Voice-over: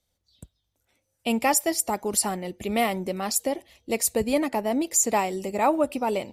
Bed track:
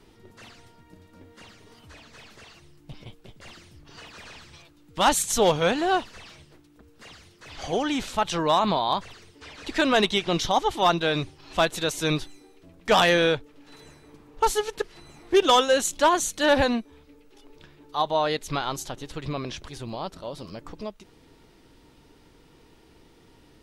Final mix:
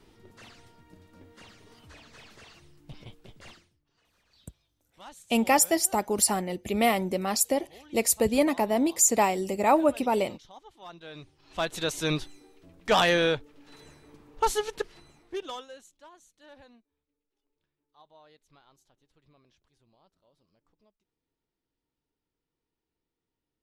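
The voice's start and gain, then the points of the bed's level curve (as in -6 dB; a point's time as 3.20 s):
4.05 s, +0.5 dB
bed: 3.50 s -3 dB
3.80 s -27 dB
10.79 s -27 dB
11.82 s -3 dB
14.89 s -3 dB
15.98 s -32.5 dB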